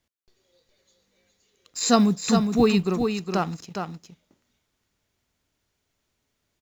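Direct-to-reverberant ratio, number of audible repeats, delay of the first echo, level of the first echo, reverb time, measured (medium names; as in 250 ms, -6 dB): no reverb, 1, 412 ms, -6.0 dB, no reverb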